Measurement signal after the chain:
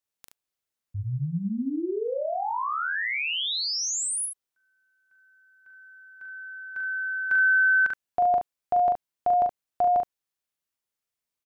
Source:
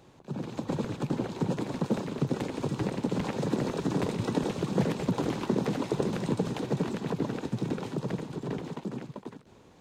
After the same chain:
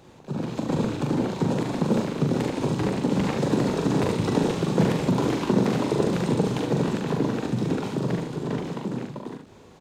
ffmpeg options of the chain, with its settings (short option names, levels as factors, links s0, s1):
-af "aecho=1:1:41|72:0.596|0.473,volume=1.68"